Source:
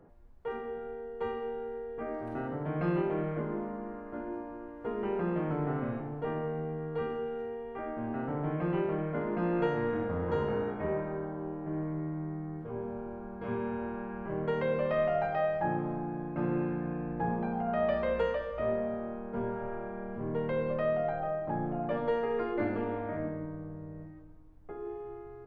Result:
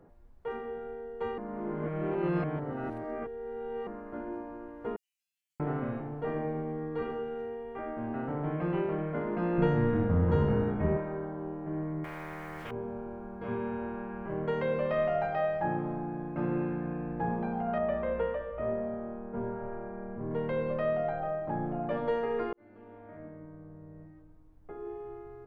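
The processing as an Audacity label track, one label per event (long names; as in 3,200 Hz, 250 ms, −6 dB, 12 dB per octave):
1.380000	3.870000	reverse
4.960000	5.600000	inverse Chebyshev high-pass filter stop band from 1,200 Hz, stop band 80 dB
6.190000	7.000000	thrown reverb, RT60 0.91 s, DRR 3 dB
9.580000	10.970000	bass and treble bass +12 dB, treble −2 dB
12.040000	12.710000	every bin compressed towards the loudest bin 4 to 1
17.780000	20.310000	high-frequency loss of the air 490 metres
22.530000	25.040000	fade in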